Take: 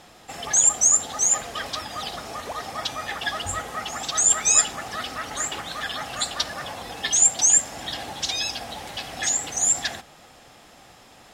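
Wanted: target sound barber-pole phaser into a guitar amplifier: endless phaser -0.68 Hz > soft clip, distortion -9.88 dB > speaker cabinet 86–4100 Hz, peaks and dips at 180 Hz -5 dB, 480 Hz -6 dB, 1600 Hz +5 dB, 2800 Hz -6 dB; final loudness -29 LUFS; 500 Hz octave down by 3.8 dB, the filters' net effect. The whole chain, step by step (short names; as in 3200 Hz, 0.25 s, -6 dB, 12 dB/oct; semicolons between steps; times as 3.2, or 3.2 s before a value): bell 500 Hz -3 dB; endless phaser -0.68 Hz; soft clip -19.5 dBFS; speaker cabinet 86–4100 Hz, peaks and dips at 180 Hz -5 dB, 480 Hz -6 dB, 1600 Hz +5 dB, 2800 Hz -6 dB; gain +6 dB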